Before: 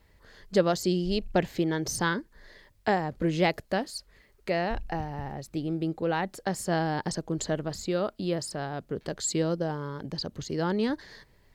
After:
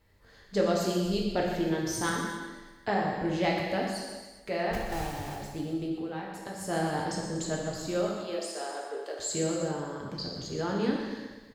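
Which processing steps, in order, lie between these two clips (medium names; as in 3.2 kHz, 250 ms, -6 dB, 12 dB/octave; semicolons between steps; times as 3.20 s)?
4.73–5.36 s: block-companded coder 3-bit; 5.88–6.61 s: compression 5:1, threshold -33 dBFS, peak gain reduction 9 dB; 8.12–9.19 s: steep high-pass 360 Hz 36 dB/octave; feedback delay 122 ms, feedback 55%, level -12.5 dB; gated-style reverb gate 440 ms falling, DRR -2.5 dB; trim -6 dB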